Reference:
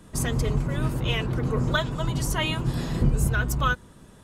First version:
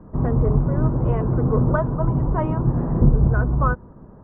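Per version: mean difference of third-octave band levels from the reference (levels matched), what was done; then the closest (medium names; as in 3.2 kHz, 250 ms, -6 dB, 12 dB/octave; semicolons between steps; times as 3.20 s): 9.0 dB: inverse Chebyshev low-pass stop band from 4.9 kHz, stop band 70 dB; trim +6.5 dB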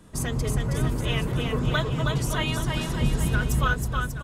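4.5 dB: bouncing-ball echo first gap 320 ms, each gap 0.85×, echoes 5; trim -2 dB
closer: second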